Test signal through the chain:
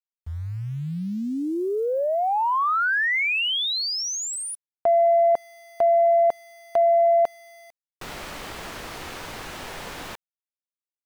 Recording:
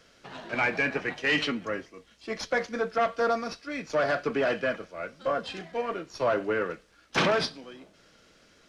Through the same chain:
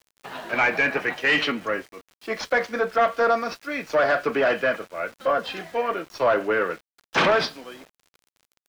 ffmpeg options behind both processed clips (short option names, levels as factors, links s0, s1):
-filter_complex "[0:a]asplit=2[s0][s1];[s1]highpass=f=720:p=1,volume=3.16,asoftclip=type=tanh:threshold=0.251[s2];[s0][s2]amix=inputs=2:normalize=0,lowpass=f=2300:p=1,volume=0.501,aeval=exprs='val(0)*gte(abs(val(0)),0.00376)':c=same,volume=1.58"